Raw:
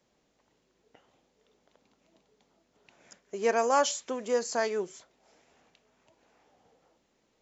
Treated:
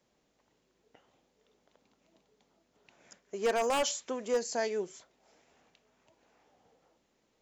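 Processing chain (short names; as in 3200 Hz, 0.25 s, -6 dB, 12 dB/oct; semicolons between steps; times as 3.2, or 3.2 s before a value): 4.37–4.83 bell 1200 Hz -10.5 dB 0.52 oct; wavefolder -19.5 dBFS; gain -2 dB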